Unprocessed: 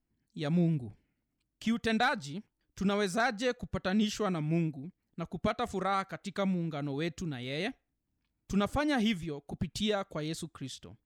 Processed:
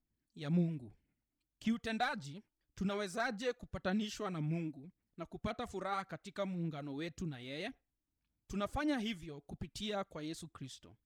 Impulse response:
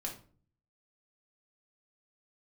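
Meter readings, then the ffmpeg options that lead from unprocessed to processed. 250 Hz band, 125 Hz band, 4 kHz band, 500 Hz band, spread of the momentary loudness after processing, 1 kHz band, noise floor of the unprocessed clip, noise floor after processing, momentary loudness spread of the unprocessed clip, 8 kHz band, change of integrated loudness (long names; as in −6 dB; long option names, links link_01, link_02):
−7.0 dB, −6.5 dB, −7.5 dB, −7.5 dB, 13 LU, −7.5 dB, −83 dBFS, below −85 dBFS, 13 LU, −7.5 dB, −7.0 dB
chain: -af "aphaser=in_gain=1:out_gain=1:delay=3.4:decay=0.45:speed=1.8:type=sinusoidal,volume=-8.5dB"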